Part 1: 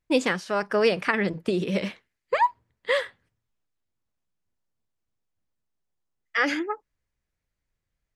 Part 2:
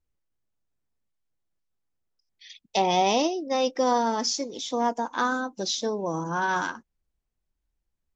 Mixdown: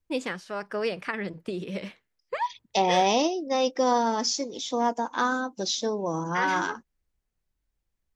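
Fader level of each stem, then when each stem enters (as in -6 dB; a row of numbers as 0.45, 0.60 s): -7.5, 0.0 dB; 0.00, 0.00 s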